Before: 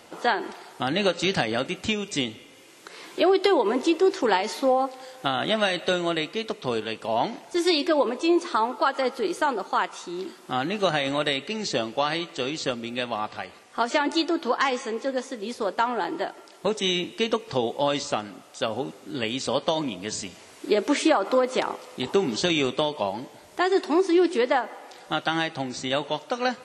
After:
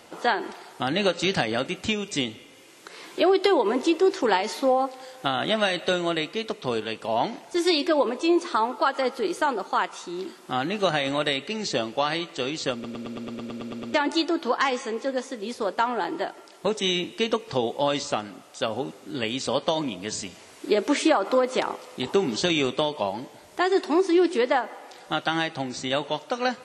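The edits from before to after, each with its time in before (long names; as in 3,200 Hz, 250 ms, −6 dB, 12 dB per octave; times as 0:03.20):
0:12.73: stutter in place 0.11 s, 11 plays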